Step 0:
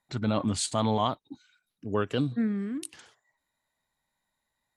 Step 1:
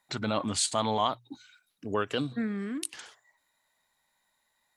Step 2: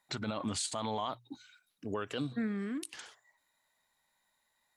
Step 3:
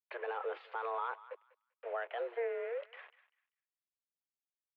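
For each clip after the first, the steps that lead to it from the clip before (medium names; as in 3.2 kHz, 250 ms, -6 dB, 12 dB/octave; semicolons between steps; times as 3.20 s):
bass shelf 370 Hz -11 dB; hum notches 60/120 Hz; in parallel at +3 dB: compression, threshold -40 dBFS, peak gain reduction 15 dB
peak limiter -23 dBFS, peak gain reduction 8.5 dB; trim -2.5 dB
bit crusher 8-bit; thinning echo 196 ms, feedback 23%, high-pass 840 Hz, level -15 dB; mistuned SSB +230 Hz 180–2400 Hz; trim -1.5 dB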